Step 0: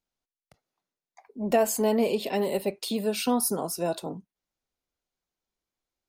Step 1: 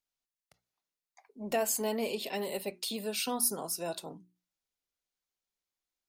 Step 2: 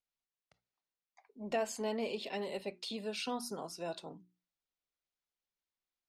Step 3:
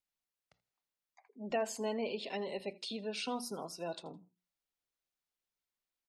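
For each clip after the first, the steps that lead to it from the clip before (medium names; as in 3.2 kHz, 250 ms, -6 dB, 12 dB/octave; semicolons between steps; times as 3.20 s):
tilt shelf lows -4.5 dB, about 1.3 kHz; hum notches 60/120/180/240/300/360 Hz; trim -5.5 dB
low-pass 4.9 kHz 12 dB/octave; trim -3.5 dB
spectral gate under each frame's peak -30 dB strong; feedback delay 81 ms, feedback 29%, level -21.5 dB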